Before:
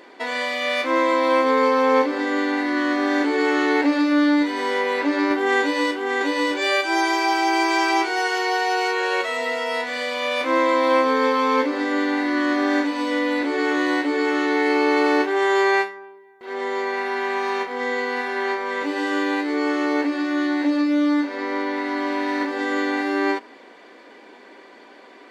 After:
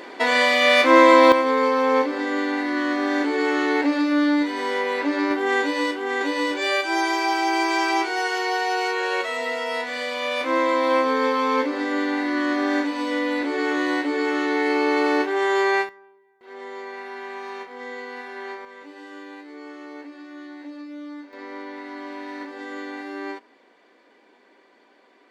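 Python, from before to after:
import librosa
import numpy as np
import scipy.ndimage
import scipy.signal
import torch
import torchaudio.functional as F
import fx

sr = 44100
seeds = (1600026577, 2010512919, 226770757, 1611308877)

y = fx.gain(x, sr, db=fx.steps((0.0, 7.0), (1.32, -2.0), (15.89, -10.5), (18.65, -17.5), (21.33, -11.0)))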